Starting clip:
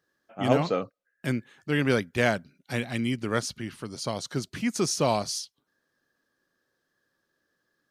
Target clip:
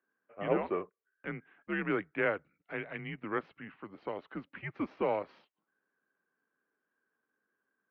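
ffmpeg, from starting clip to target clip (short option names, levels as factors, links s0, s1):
-af "aeval=exprs='if(lt(val(0),0),0.708*val(0),val(0))':c=same,highpass=f=330:t=q:w=0.5412,highpass=f=330:t=q:w=1.307,lowpass=f=2600:t=q:w=0.5176,lowpass=f=2600:t=q:w=0.7071,lowpass=f=2600:t=q:w=1.932,afreqshift=-97,volume=0.596"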